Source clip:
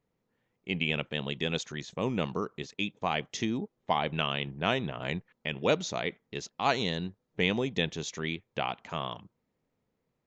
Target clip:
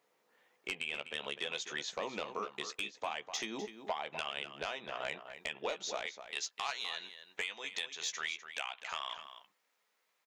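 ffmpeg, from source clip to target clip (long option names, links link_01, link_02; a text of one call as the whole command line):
ffmpeg -i in.wav -filter_complex "[0:a]asetnsamples=nb_out_samples=441:pad=0,asendcmd='6.06 highpass f 1300',highpass=590,acompressor=threshold=-44dB:ratio=10,aeval=exprs='0.0473*sin(PI/2*2*val(0)/0.0473)':channel_layout=same,asplit=2[link_01][link_02];[link_02]adelay=14,volume=-8dB[link_03];[link_01][link_03]amix=inputs=2:normalize=0,asplit=2[link_04][link_05];[link_05]adelay=250.7,volume=-10dB,highshelf=frequency=4000:gain=-5.64[link_06];[link_04][link_06]amix=inputs=2:normalize=0" out.wav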